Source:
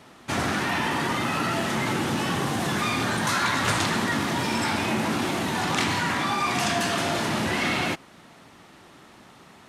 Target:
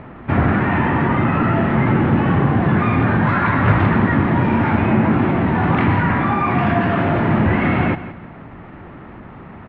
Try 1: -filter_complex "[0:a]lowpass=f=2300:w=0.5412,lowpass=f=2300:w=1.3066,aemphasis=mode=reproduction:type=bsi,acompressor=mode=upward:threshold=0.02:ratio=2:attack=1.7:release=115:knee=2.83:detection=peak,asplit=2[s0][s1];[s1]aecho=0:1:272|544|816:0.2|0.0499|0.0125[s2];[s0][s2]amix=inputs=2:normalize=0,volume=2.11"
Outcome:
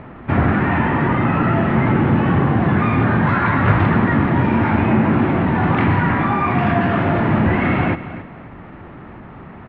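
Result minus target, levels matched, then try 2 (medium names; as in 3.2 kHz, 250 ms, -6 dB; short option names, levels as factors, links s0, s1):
echo 102 ms late
-filter_complex "[0:a]lowpass=f=2300:w=0.5412,lowpass=f=2300:w=1.3066,aemphasis=mode=reproduction:type=bsi,acompressor=mode=upward:threshold=0.02:ratio=2:attack=1.7:release=115:knee=2.83:detection=peak,asplit=2[s0][s1];[s1]aecho=0:1:170|340|510:0.2|0.0499|0.0125[s2];[s0][s2]amix=inputs=2:normalize=0,volume=2.11"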